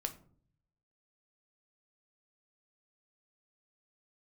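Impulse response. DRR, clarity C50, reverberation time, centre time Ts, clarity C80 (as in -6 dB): 6.0 dB, 14.5 dB, 0.50 s, 7 ms, 19.0 dB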